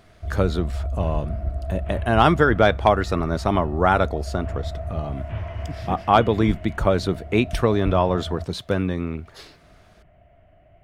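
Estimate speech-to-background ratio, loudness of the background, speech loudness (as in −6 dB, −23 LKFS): 10.0 dB, −32.0 LKFS, −22.0 LKFS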